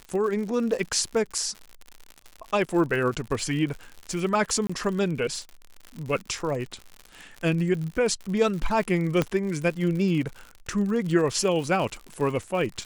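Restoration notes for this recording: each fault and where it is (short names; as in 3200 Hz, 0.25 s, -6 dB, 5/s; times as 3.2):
crackle 87/s -32 dBFS
4.67–4.7 gap 25 ms
9.22 pop -10 dBFS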